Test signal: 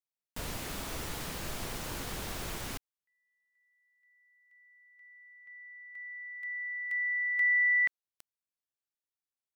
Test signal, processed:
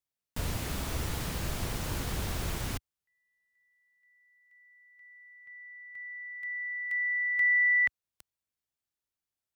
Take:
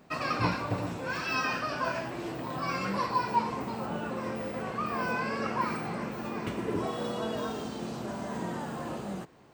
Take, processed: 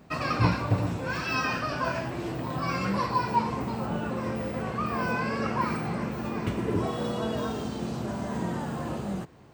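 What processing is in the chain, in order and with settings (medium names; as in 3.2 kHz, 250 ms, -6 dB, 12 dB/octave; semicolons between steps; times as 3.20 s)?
peaking EQ 73 Hz +9.5 dB 2.4 oct; trim +1.5 dB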